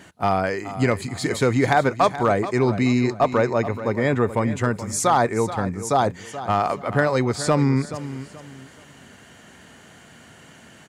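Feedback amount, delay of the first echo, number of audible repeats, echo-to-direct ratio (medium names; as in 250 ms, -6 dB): 29%, 428 ms, 3, -12.5 dB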